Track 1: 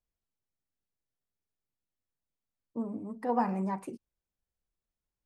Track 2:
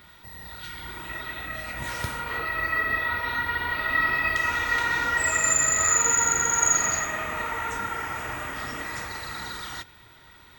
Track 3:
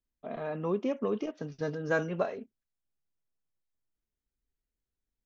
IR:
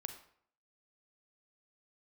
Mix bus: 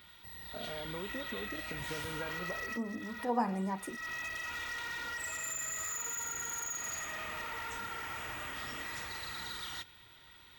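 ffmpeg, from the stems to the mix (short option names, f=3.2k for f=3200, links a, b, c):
-filter_complex "[0:a]highshelf=f=4.2k:g=9.5,volume=-3dB,asplit=2[a][b];[1:a]equalizer=f=3.2k:w=1.4:g=7.5,acompressor=threshold=-26dB:ratio=5,asoftclip=type=hard:threshold=-27.5dB,volume=-9.5dB[c];[2:a]acompressor=threshold=-37dB:ratio=6,adelay=300,volume=-3dB[d];[b]apad=whole_len=466929[e];[c][e]sidechaincompress=threshold=-46dB:ratio=10:attack=16:release=229[f];[a][f][d]amix=inputs=3:normalize=0,highshelf=f=7.5k:g=5"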